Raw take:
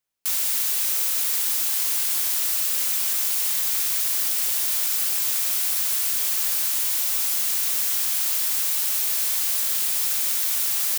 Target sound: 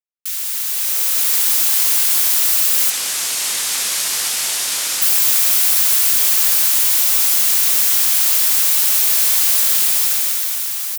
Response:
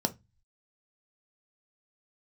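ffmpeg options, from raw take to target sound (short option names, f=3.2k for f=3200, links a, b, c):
-filter_complex "[0:a]asettb=1/sr,asplit=3[a][b][c];[a]atrim=end=2.904[d];[b]atrim=start=2.9:end=5.02,asetpts=PTS-STARTPTS,afade=t=in:d=0.004:c=qsin,afade=t=out:st=2.116:d=0.004:c=qsin,lowpass=9.5k[e];[c]atrim=start=5.016[f];[d][e]acrossfade=d=0.004:c1=hsin:c2=qsin[g];[g][f]acrossfade=d=0.004:c1=qsin:c2=hsin,dynaudnorm=f=220:g=9:m=14dB,afwtdn=0.0126"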